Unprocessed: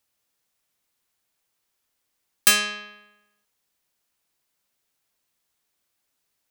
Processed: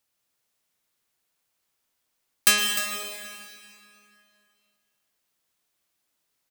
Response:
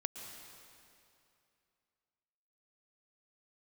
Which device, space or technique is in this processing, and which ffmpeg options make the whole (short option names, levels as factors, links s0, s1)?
cave: -filter_complex "[0:a]equalizer=f=61:t=o:w=0.77:g=-4,aecho=1:1:302:0.266[s0];[1:a]atrim=start_sample=2205[s1];[s0][s1]afir=irnorm=-1:irlink=0"